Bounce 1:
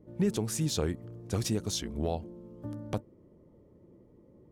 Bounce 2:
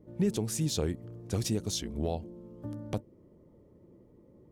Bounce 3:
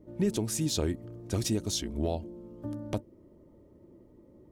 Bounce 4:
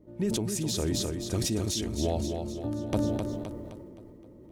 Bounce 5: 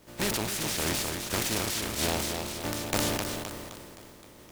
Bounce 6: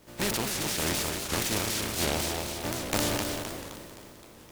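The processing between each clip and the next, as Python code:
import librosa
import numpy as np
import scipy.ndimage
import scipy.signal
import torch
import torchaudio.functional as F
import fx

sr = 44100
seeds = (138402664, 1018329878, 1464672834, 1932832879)

y1 = fx.dynamic_eq(x, sr, hz=1300.0, q=1.1, threshold_db=-51.0, ratio=4.0, max_db=-5)
y2 = y1 + 0.33 * np.pad(y1, (int(3.2 * sr / 1000.0), 0))[:len(y1)]
y2 = F.gain(torch.from_numpy(y2), 1.5).numpy()
y3 = fx.rider(y2, sr, range_db=3, speed_s=0.5)
y3 = fx.echo_feedback(y3, sr, ms=260, feedback_pct=49, wet_db=-6.5)
y3 = fx.sustainer(y3, sr, db_per_s=23.0)
y4 = fx.spec_flatten(y3, sr, power=0.37)
y4 = fx.noise_mod_delay(y4, sr, seeds[0], noise_hz=1300.0, depth_ms=0.045)
y5 = y4 + 10.0 ** (-9.5 / 20.0) * np.pad(y4, (int(185 * sr / 1000.0), 0))[:len(y4)]
y5 = fx.record_warp(y5, sr, rpm=78.0, depth_cents=250.0)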